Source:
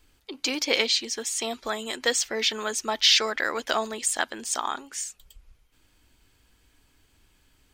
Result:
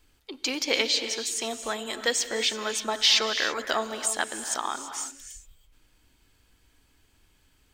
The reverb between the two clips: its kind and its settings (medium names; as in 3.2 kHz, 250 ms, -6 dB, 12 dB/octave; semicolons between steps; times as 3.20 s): gated-style reverb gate 360 ms rising, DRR 9 dB; trim -1.5 dB